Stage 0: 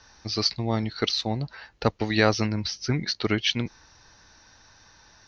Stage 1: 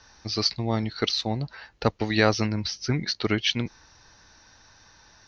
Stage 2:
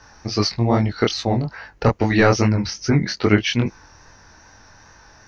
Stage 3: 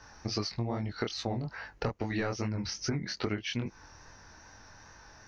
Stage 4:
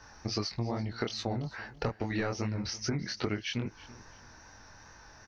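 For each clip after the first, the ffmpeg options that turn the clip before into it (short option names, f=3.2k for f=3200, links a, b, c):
-af anull
-af "apsyclip=12dB,equalizer=f=3.8k:t=o:w=0.94:g=-11.5,flanger=delay=19.5:depth=6:speed=2.4"
-af "acompressor=threshold=-24dB:ratio=8,volume=-5.5dB"
-af "aecho=1:1:334|668:0.112|0.0303"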